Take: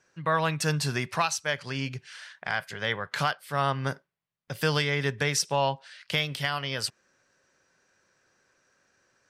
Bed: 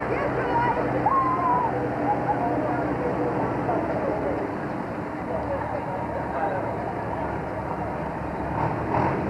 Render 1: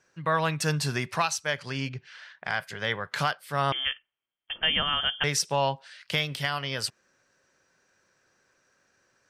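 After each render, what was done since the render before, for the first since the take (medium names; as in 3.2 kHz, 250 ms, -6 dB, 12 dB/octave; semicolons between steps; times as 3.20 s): 1.89–2.44 s: distance through air 140 m; 3.72–5.24 s: frequency inversion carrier 3.3 kHz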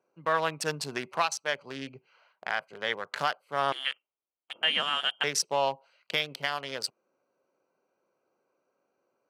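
local Wiener filter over 25 samples; high-pass 320 Hz 12 dB/octave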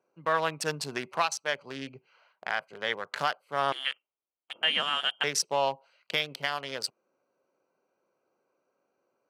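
no audible change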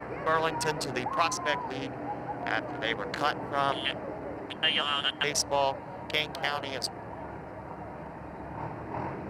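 add bed -12 dB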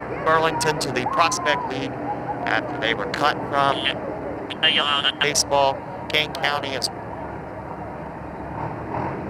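trim +8.5 dB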